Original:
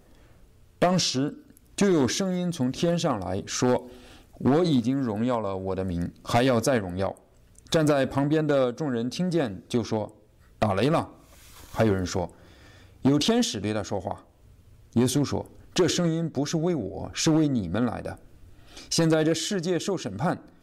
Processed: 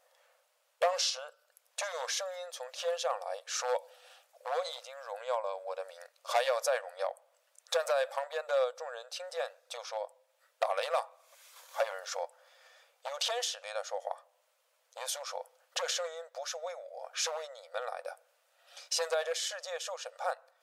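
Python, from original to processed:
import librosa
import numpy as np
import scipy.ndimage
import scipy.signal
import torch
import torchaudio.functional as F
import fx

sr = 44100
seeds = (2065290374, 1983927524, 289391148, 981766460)

y = fx.brickwall_highpass(x, sr, low_hz=480.0)
y = F.gain(torch.from_numpy(y), -5.0).numpy()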